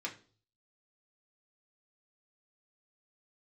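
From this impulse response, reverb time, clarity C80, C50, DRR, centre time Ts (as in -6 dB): 0.40 s, 18.0 dB, 13.0 dB, -2.0 dB, 13 ms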